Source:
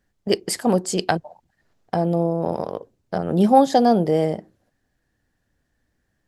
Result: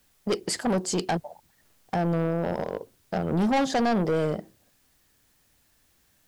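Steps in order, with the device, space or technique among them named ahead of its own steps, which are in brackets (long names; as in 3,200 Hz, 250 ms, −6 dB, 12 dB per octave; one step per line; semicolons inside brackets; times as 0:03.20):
compact cassette (soft clipping −20 dBFS, distortion −7 dB; low-pass filter 9,000 Hz; tape wow and flutter; white noise bed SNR 38 dB)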